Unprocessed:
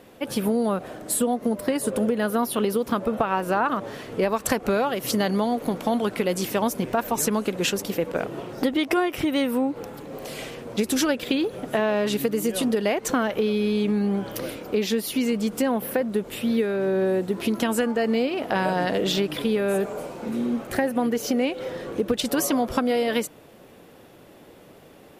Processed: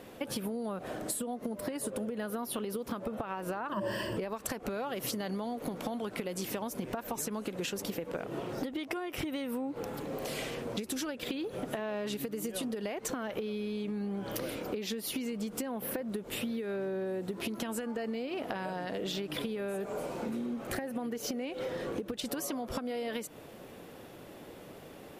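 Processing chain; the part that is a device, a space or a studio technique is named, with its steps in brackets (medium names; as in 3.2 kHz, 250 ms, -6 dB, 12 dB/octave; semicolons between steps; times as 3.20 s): serial compression, leveller first (compression, threshold -25 dBFS, peak gain reduction 8.5 dB; compression, threshold -33 dBFS, peak gain reduction 10 dB); 3.72–4.17 s: rippled EQ curve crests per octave 1.3, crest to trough 17 dB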